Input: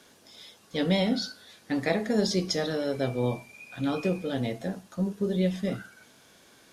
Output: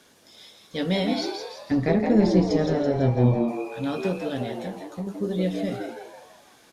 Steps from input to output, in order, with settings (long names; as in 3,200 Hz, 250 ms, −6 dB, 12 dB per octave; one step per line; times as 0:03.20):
0:01.71–0:03.48: RIAA equalisation playback
0:04.42–0:05.07: downward compressor, threshold −29 dBFS, peak gain reduction 6.5 dB
echo with shifted repeats 166 ms, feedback 47%, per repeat +110 Hz, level −6 dB